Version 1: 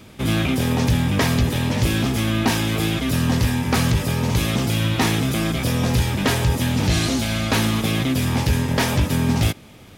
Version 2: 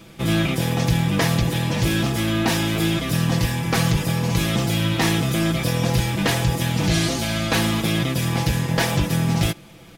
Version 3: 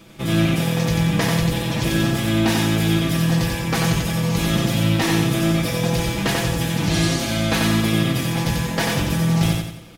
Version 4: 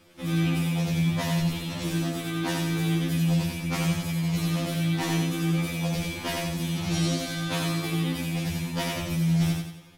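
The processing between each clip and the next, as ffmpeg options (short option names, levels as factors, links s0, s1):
-af "aecho=1:1:6:0.65,volume=0.841"
-af "bandreject=f=60:t=h:w=6,bandreject=f=120:t=h:w=6,aecho=1:1:91|182|273|364|455:0.708|0.297|0.125|0.0525|0.022,volume=0.841"
-af "afftfilt=real='re*2*eq(mod(b,4),0)':imag='im*2*eq(mod(b,4),0)':win_size=2048:overlap=0.75,volume=0.501"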